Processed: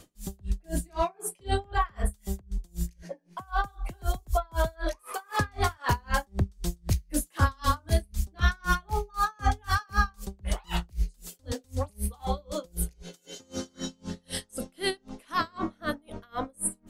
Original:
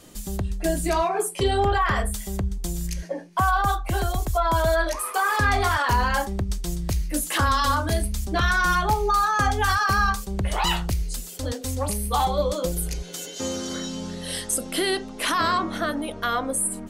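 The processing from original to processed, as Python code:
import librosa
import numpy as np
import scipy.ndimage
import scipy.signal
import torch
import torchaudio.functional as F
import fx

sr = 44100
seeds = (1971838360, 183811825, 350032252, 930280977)

y = fx.low_shelf(x, sr, hz=230.0, db=4.5)
y = y * 10.0 ** (-35 * (0.5 - 0.5 * np.cos(2.0 * np.pi * 3.9 * np.arange(len(y)) / sr)) / 20.0)
y = y * librosa.db_to_amplitude(-1.5)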